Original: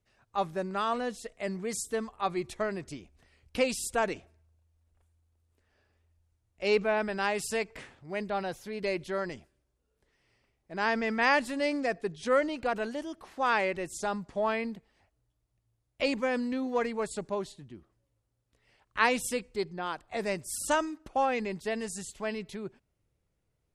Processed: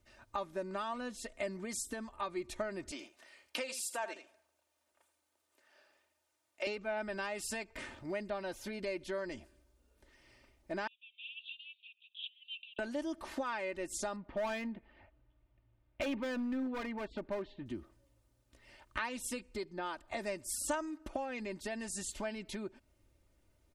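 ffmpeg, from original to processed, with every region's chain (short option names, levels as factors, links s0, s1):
-filter_complex "[0:a]asettb=1/sr,asplit=3[s0][s1][s2];[s0]atrim=end=2.914[s3];[s1]atrim=start=2.91:end=6.67,asetpts=PTS-STARTPTS,afade=t=in:d=0.004:c=qsin,afade=t=out:st=3.756:d=0.004:c=qsin,highpass=530,aecho=1:1:80:0.224,atrim=end_sample=165816[s4];[s2]atrim=start=6.666[s5];[s3][s4]acrossfade=d=0.004:c1=hsin:c2=qsin[s6];[s6][s5]acrossfade=d=0.004:c1=qsin:c2=hsin,asettb=1/sr,asplit=3[s7][s8][s9];[s7]atrim=end=10.874[s10];[s8]atrim=start=10.87:end=12.79,asetpts=PTS-STARTPTS,afade=t=in:d=0.004:c=qsin,afade=t=out:st=1.916:d=0.004:c=qsin,acompressor=threshold=0.02:ratio=10:attack=3.2:release=140:knee=1:detection=peak,asuperpass=centerf=3100:order=12:qfactor=2.8[s11];[s9]atrim=start=12.786[s12];[s10][s11]acrossfade=d=0.004:c1=hsin:c2=qsin[s13];[s13][s12]acrossfade=d=0.004:c1=qsin:c2=hsin,asettb=1/sr,asplit=3[s14][s15][s16];[s14]atrim=end=14.164[s17];[s15]atrim=start=14.16:end=17.66,asetpts=PTS-STARTPTS,afade=t=in:d=0.004:c=qsin,afade=t=out:st=3.496:d=0.004:c=qsin,lowpass=f=3000:w=0.5412,lowpass=f=3000:w=1.3066,asoftclip=type=hard:threshold=0.0335[s18];[s16]atrim=start=17.656[s19];[s17][s18]acrossfade=d=0.004:c1=hsin:c2=qsin[s20];[s20][s19]acrossfade=d=0.004:c1=qsin:c2=hsin,acompressor=threshold=0.00631:ratio=6,aecho=1:1:3.3:0.61,volume=2"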